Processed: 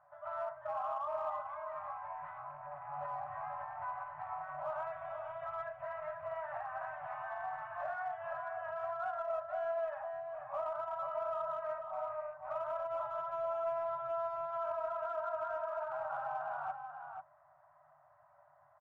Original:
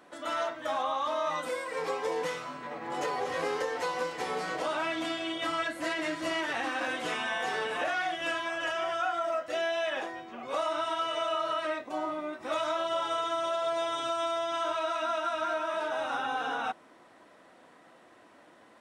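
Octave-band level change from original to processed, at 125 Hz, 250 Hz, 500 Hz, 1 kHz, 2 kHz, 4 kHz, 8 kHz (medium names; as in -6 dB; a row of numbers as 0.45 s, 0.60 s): -8.0 dB, under -30 dB, -6.5 dB, -6.5 dB, -14.5 dB, under -30 dB, under -30 dB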